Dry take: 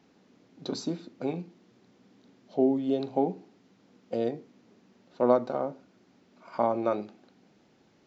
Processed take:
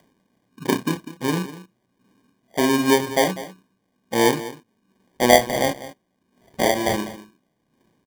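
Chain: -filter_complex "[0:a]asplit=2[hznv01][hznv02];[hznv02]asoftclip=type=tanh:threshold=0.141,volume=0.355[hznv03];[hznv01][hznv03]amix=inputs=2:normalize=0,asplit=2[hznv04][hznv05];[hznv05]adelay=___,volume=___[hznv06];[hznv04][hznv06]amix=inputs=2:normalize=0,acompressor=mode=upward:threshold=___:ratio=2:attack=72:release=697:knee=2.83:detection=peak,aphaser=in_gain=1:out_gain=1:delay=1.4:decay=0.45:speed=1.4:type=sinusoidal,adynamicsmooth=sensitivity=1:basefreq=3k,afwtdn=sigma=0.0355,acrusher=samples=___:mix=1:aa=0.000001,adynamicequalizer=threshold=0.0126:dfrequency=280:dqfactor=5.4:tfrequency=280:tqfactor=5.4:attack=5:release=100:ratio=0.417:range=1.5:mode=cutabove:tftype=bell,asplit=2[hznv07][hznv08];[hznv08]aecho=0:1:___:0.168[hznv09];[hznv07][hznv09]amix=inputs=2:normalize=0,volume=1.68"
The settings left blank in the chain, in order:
32, 0.422, 0.00398, 33, 198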